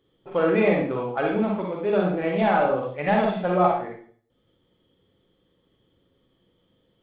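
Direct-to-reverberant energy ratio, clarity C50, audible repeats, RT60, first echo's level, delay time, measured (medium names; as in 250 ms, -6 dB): -1.0 dB, 1.5 dB, no echo, 0.50 s, no echo, no echo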